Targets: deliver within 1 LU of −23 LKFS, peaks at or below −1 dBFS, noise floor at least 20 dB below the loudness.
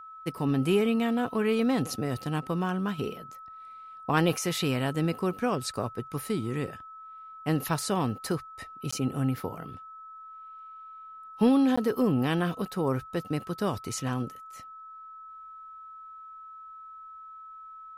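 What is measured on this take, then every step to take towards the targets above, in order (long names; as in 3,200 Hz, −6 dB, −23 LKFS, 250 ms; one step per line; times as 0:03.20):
number of dropouts 2; longest dropout 15 ms; interfering tone 1,300 Hz; level of the tone −43 dBFS; integrated loudness −29.0 LKFS; sample peak −12.5 dBFS; target loudness −23.0 LKFS
→ repair the gap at 0:08.91/0:11.76, 15 ms
notch filter 1,300 Hz, Q 30
level +6 dB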